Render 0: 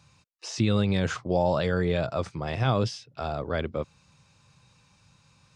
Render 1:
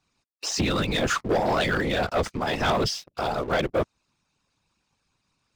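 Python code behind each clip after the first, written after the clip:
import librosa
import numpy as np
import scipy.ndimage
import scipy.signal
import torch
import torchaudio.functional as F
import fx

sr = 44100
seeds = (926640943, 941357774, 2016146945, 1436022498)

y = fx.hpss(x, sr, part='harmonic', gain_db=-15)
y = fx.whisperise(y, sr, seeds[0])
y = fx.leveller(y, sr, passes=3)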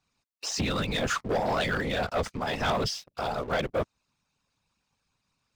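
y = fx.peak_eq(x, sr, hz=340.0, db=-6.0, octaves=0.3)
y = y * librosa.db_to_amplitude(-3.5)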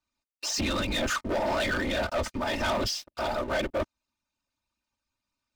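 y = x + 0.77 * np.pad(x, (int(3.3 * sr / 1000.0), 0))[:len(x)]
y = fx.leveller(y, sr, passes=2)
y = y * librosa.db_to_amplitude(-6.0)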